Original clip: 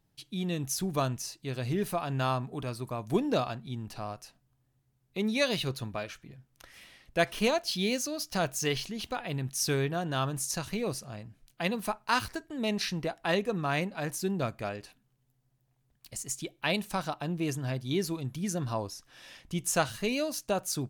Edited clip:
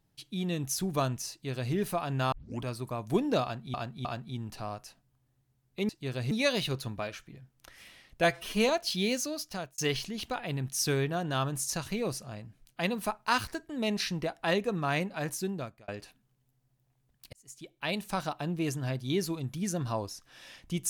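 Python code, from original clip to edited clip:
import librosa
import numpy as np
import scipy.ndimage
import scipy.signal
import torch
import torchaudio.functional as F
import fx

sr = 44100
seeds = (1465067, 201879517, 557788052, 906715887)

y = fx.edit(x, sr, fx.duplicate(start_s=1.31, length_s=0.42, to_s=5.27),
    fx.tape_start(start_s=2.32, length_s=0.31),
    fx.repeat(start_s=3.43, length_s=0.31, count=3),
    fx.stretch_span(start_s=7.2, length_s=0.3, factor=1.5),
    fx.fade_out_span(start_s=8.11, length_s=0.48),
    fx.fade_out_span(start_s=14.14, length_s=0.55),
    fx.fade_in_span(start_s=16.14, length_s=0.85), tone=tone)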